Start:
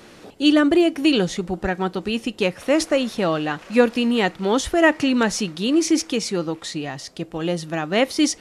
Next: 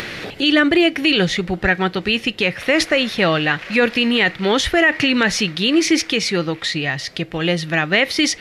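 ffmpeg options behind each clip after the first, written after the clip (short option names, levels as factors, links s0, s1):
-af "equalizer=f=125:t=o:w=1:g=5,equalizer=f=250:t=o:w=1:g=-4,equalizer=f=1000:t=o:w=1:g=-4,equalizer=f=2000:t=o:w=1:g=11,equalizer=f=4000:t=o:w=1:g=5,equalizer=f=8000:t=o:w=1:g=-7,acompressor=mode=upward:threshold=0.0562:ratio=2.5,alimiter=level_in=2.82:limit=0.891:release=50:level=0:latency=1,volume=0.596"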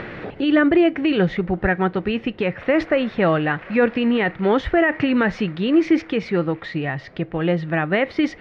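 -af "lowpass=1400"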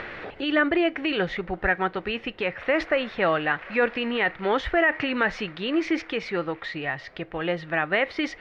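-af "equalizer=f=160:t=o:w=2.8:g=-13"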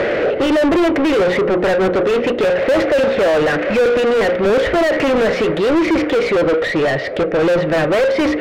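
-filter_complex "[0:a]lowshelf=f=710:t=q:w=3:g=9,bandreject=f=60:t=h:w=6,bandreject=f=120:t=h:w=6,bandreject=f=180:t=h:w=6,bandreject=f=240:t=h:w=6,bandreject=f=300:t=h:w=6,bandreject=f=360:t=h:w=6,bandreject=f=420:t=h:w=6,bandreject=f=480:t=h:w=6,bandreject=f=540:t=h:w=6,asplit=2[s0][s1];[s1]highpass=f=720:p=1,volume=70.8,asoftclip=type=tanh:threshold=1[s2];[s0][s2]amix=inputs=2:normalize=0,lowpass=f=1600:p=1,volume=0.501,volume=0.447"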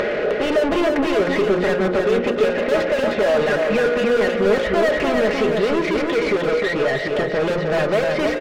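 -af "aecho=1:1:4.8:0.46,acompressor=mode=upward:threshold=0.178:ratio=2.5,aecho=1:1:308|616|924|1232:0.631|0.183|0.0531|0.0154,volume=0.531"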